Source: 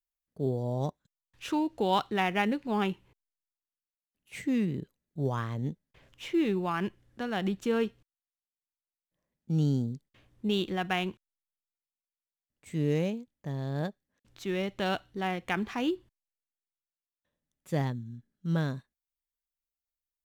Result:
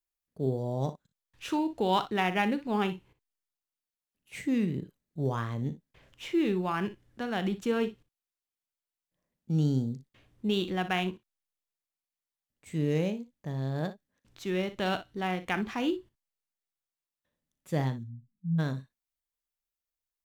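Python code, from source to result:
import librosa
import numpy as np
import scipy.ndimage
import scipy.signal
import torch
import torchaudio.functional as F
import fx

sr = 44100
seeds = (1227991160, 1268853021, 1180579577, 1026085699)

p1 = fx.spec_expand(x, sr, power=3.1, at=(18.03, 18.58), fade=0.02)
y = p1 + fx.room_early_taps(p1, sr, ms=(38, 60), db=(-15.0, -14.0), dry=0)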